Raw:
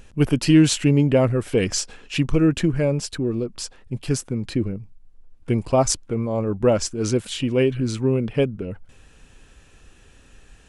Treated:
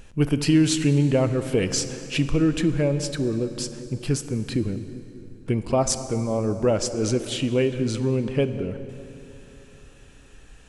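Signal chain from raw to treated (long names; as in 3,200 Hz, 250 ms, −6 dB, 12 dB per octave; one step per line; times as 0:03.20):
downward compressor 1.5 to 1, threshold −22 dBFS, peak gain reduction 5 dB
on a send: feedback echo with a low-pass in the loop 196 ms, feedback 63%, low-pass 1,000 Hz, level −14.5 dB
on the sum: dense smooth reverb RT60 3.3 s, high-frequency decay 0.7×, DRR 11 dB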